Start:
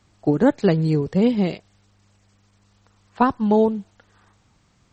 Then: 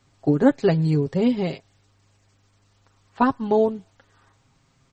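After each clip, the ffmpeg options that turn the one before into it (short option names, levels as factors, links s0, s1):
-af "aecho=1:1:7.4:0.56,volume=0.75"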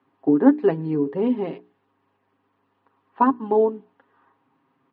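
-af "highpass=280,equalizer=f=280:t=q:w=4:g=8,equalizer=f=420:t=q:w=4:g=3,equalizer=f=600:t=q:w=4:g=-7,equalizer=f=990:t=q:w=4:g=5,equalizer=f=1400:t=q:w=4:g=-4,equalizer=f=2200:t=q:w=4:g=-8,lowpass=f=2400:w=0.5412,lowpass=f=2400:w=1.3066,bandreject=f=60:t=h:w=6,bandreject=f=120:t=h:w=6,bandreject=f=180:t=h:w=6,bandreject=f=240:t=h:w=6,bandreject=f=300:t=h:w=6,bandreject=f=360:t=h:w=6,bandreject=f=420:t=h:w=6"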